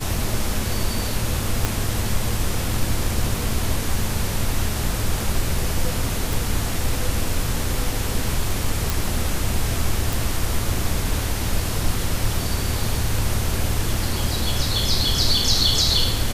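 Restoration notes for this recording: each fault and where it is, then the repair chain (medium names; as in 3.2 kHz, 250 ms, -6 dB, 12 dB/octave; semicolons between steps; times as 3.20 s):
1.65 s: pop -5 dBFS
6.33 s: pop
8.90 s: pop
10.13 s: pop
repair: de-click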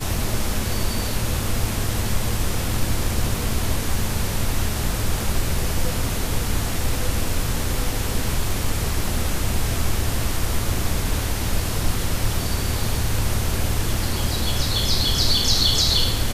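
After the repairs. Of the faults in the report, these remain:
1.65 s: pop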